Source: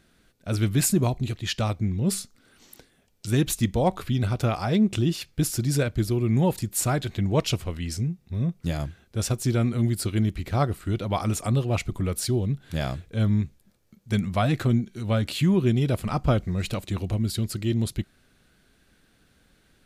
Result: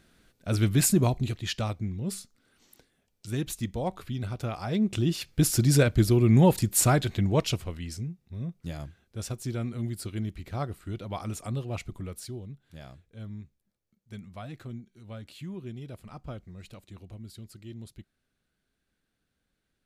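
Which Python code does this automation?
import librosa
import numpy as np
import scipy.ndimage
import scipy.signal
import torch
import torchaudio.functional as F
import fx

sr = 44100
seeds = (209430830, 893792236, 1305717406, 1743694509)

y = fx.gain(x, sr, db=fx.line((1.16, -0.5), (2.09, -8.5), (4.48, -8.5), (5.57, 3.0), (6.85, 3.0), (8.18, -9.0), (11.89, -9.0), (12.65, -18.0)))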